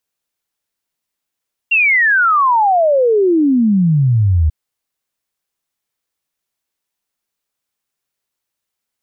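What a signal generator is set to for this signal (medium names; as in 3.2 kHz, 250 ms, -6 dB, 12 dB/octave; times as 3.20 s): log sweep 2.8 kHz -> 74 Hz 2.79 s -9 dBFS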